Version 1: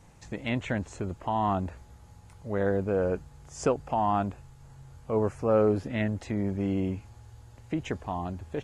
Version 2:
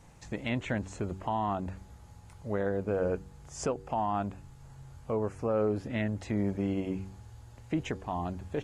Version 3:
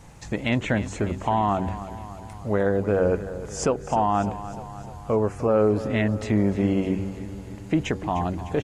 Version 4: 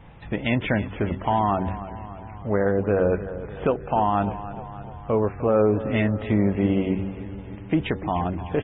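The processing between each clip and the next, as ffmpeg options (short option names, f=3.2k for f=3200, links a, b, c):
-af "bandreject=f=95.56:t=h:w=4,bandreject=f=191.12:t=h:w=4,bandreject=f=286.68:t=h:w=4,bandreject=f=382.24:t=h:w=4,bandreject=f=477.8:t=h:w=4,alimiter=limit=-20.5dB:level=0:latency=1:release=368"
-af "aecho=1:1:302|604|906|1208|1510|1812:0.211|0.125|0.0736|0.0434|0.0256|0.0151,volume=8.5dB"
-af "aresample=8000,aresample=44100,volume=1dB" -ar 24000 -c:a libmp3lame -b:a 16k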